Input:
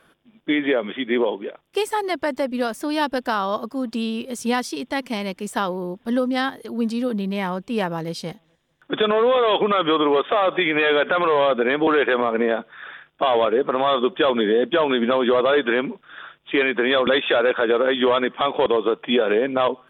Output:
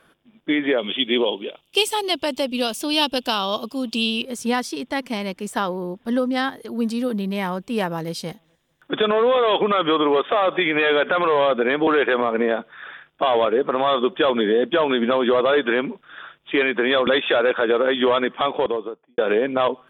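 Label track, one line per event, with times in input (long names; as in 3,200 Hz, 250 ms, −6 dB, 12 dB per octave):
0.780000	4.220000	high shelf with overshoot 2,300 Hz +7 dB, Q 3
6.710000	8.950000	high-shelf EQ 8,800 Hz +8 dB
18.400000	19.180000	fade out and dull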